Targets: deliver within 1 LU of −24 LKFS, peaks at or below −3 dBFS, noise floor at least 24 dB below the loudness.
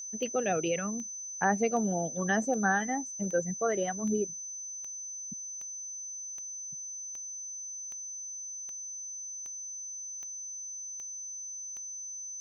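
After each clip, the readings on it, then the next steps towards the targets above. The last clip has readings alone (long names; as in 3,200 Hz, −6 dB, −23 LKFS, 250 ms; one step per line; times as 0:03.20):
number of clicks 16; interfering tone 6,100 Hz; level of the tone −38 dBFS; integrated loudness −33.5 LKFS; sample peak −13.0 dBFS; target loudness −24.0 LKFS
→ click removal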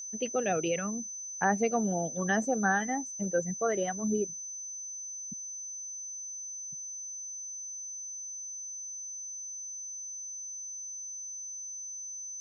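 number of clicks 0; interfering tone 6,100 Hz; level of the tone −38 dBFS
→ notch filter 6,100 Hz, Q 30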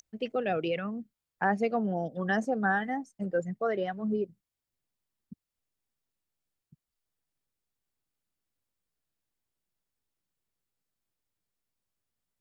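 interfering tone none found; integrated loudness −31.0 LKFS; sample peak −13.5 dBFS; target loudness −24.0 LKFS
→ level +7 dB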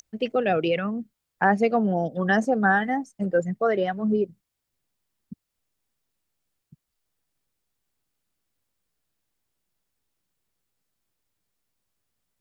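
integrated loudness −24.0 LKFS; sample peak −6.5 dBFS; background noise floor −82 dBFS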